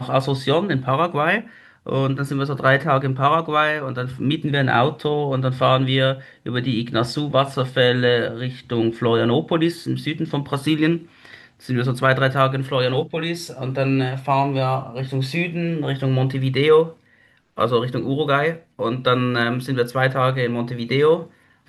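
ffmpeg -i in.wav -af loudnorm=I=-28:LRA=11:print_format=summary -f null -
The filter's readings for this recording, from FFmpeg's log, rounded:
Input Integrated:    -20.5 LUFS
Input True Peak:      -1.6 dBTP
Input LRA:             2.1 LU
Input Threshold:     -30.7 LUFS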